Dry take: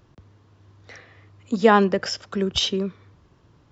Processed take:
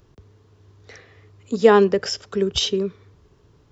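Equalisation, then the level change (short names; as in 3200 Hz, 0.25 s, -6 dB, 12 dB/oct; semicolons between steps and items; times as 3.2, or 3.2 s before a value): low shelf 81 Hz +8.5 dB; bell 420 Hz +11.5 dB 0.26 oct; high shelf 5000 Hz +8.5 dB; -2.5 dB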